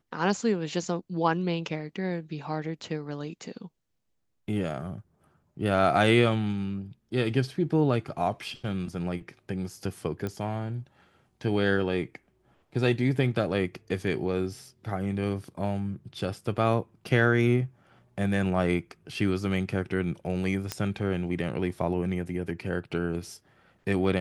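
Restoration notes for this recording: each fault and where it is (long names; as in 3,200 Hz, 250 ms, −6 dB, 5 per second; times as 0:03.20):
0:10.27: click −20 dBFS
0:20.72: click −14 dBFS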